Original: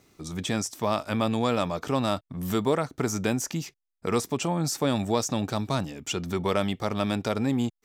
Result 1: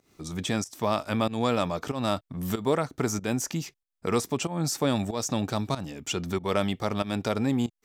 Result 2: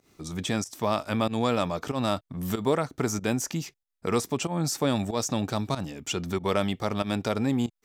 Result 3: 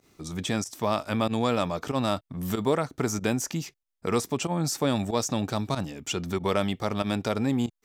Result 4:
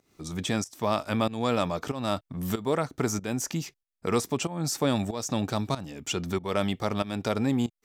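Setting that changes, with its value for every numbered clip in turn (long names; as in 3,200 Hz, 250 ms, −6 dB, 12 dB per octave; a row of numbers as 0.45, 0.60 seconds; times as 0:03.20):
fake sidechain pumping, release: 203, 129, 72, 324 milliseconds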